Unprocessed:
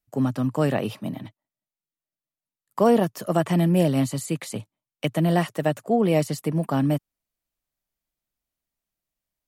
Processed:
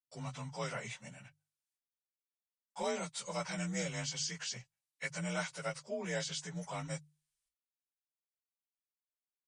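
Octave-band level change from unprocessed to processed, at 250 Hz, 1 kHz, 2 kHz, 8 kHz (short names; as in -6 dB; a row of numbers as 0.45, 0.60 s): -21.0, -15.5, -6.5, -2.5 dB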